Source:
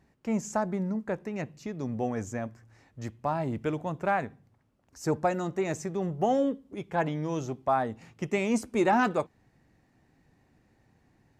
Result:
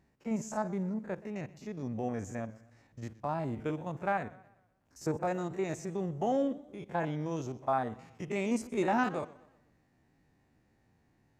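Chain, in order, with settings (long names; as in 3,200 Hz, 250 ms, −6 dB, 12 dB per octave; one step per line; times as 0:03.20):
spectrum averaged block by block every 50 ms
feedback echo with a swinging delay time 123 ms, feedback 42%, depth 131 cents, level −20 dB
level −3.5 dB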